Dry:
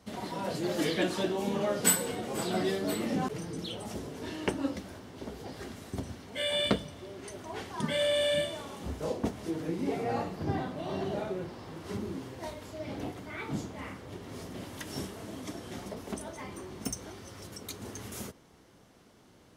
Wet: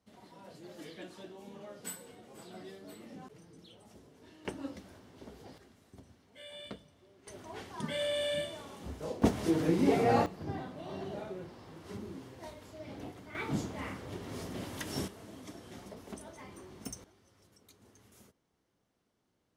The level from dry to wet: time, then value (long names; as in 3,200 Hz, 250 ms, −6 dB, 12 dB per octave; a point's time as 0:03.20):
−18 dB
from 0:04.45 −9 dB
from 0:05.58 −18 dB
from 0:07.27 −5.5 dB
from 0:09.22 +5.5 dB
from 0:10.26 −7 dB
from 0:13.35 +1 dB
from 0:15.08 −7.5 dB
from 0:17.04 −19.5 dB